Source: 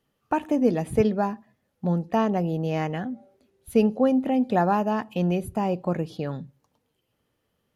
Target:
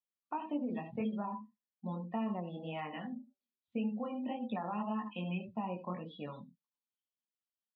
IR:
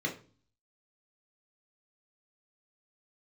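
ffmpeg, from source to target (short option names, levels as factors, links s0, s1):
-filter_complex "[0:a]asplit=2[s0][s1];[s1]aecho=0:1:75:0.282[s2];[s0][s2]amix=inputs=2:normalize=0,flanger=delay=17.5:depth=6.7:speed=1.8,acrossover=split=2900[s3][s4];[s4]acompressor=threshold=0.00126:ratio=4:attack=1:release=60[s5];[s3][s5]amix=inputs=2:normalize=0,tiltshelf=f=1400:g=-10,alimiter=limit=0.0668:level=0:latency=1:release=87,highpass=180,equalizer=f=220:t=q:w=4:g=9,equalizer=f=390:t=q:w=4:g=-6,equalizer=f=1000:t=q:w=4:g=7,equalizer=f=1600:t=q:w=4:g=-8,equalizer=f=3700:t=q:w=4:g=5,lowpass=f=4600:w=0.5412,lowpass=f=4600:w=1.3066,acompressor=threshold=0.0316:ratio=6,asplit=2[s6][s7];[1:a]atrim=start_sample=2205,atrim=end_sample=6615[s8];[s7][s8]afir=irnorm=-1:irlink=0,volume=0.178[s9];[s6][s9]amix=inputs=2:normalize=0,afftdn=nr=26:nf=-44,volume=0.668"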